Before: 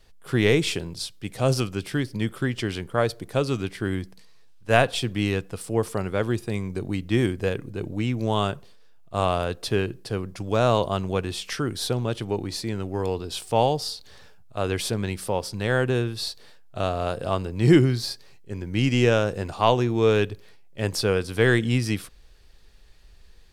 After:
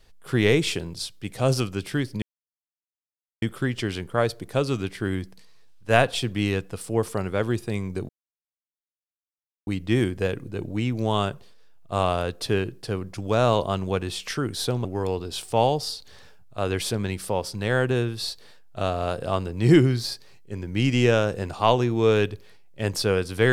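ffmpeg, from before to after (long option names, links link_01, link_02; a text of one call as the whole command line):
ffmpeg -i in.wav -filter_complex "[0:a]asplit=4[link_01][link_02][link_03][link_04];[link_01]atrim=end=2.22,asetpts=PTS-STARTPTS,afade=type=out:start_time=2.216:duration=0.004:curve=hsin,apad=pad_dur=1.2[link_05];[link_02]atrim=start=2.22:end=6.89,asetpts=PTS-STARTPTS,afade=type=in:duration=0.004:curve=hsin,afade=type=out:start_time=4.666:duration=0.004:curve=hsin,apad=pad_dur=1.58[link_06];[link_03]atrim=start=6.89:end=12.072,asetpts=PTS-STARTPTS,afade=type=in:duration=0.004:curve=hsin[link_07];[link_04]atrim=start=12.838[link_08];[link_05][link_06][link_07]concat=n=3:v=0:a=1[link_09];[link_09][link_08]acrossfade=duration=0.004:curve1=hsin:curve2=hsin" out.wav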